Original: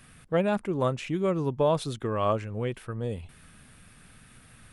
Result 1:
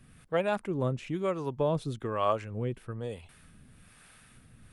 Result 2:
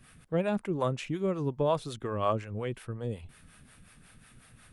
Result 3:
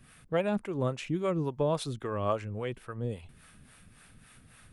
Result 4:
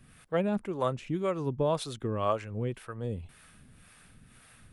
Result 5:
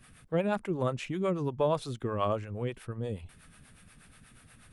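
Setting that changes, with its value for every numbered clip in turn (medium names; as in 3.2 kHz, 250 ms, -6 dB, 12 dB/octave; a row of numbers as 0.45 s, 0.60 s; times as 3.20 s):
harmonic tremolo, rate: 1.1 Hz, 5.5 Hz, 3.6 Hz, 1.9 Hz, 8.3 Hz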